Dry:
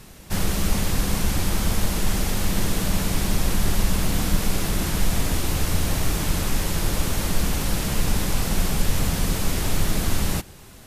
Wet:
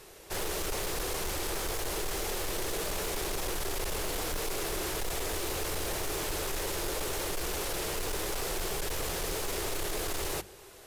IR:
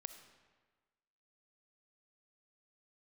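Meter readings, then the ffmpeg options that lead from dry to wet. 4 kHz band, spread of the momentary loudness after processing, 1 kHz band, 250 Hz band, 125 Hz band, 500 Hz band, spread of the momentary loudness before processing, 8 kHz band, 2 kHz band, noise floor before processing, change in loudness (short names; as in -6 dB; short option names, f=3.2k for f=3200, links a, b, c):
-6.5 dB, 1 LU, -5.5 dB, -14.5 dB, -17.5 dB, -2.5 dB, 1 LU, -6.5 dB, -6.5 dB, -44 dBFS, -8.5 dB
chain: -af "lowshelf=f=300:t=q:w=3:g=-8.5,bandreject=f=50:t=h:w=6,bandreject=f=100:t=h:w=6,bandreject=f=150:t=h:w=6,bandreject=f=200:t=h:w=6,asoftclip=type=hard:threshold=-25dB,volume=-4.5dB"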